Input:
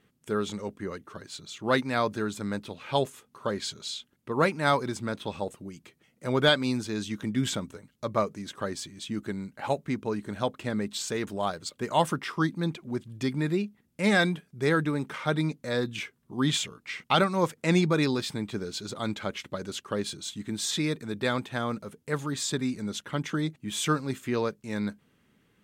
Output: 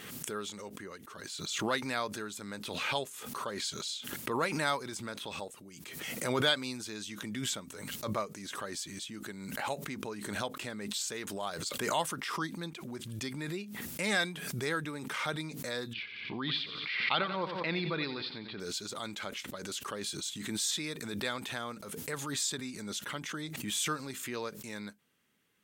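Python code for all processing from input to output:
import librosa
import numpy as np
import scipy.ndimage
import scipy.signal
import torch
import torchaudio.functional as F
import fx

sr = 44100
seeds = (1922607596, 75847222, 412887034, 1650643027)

y = fx.chain(x, sr, fx.ellip_lowpass(hz=4500.0, order=4, stop_db=40),
    fx.echo_feedback(ms=89, feedback_pct=43, wet_db=-12.5), at=(15.93, 18.6))
y = fx.tilt_eq(y, sr, slope=2.5)
y = fx.pre_swell(y, sr, db_per_s=35.0)
y = y * librosa.db_to_amplitude(-8.0)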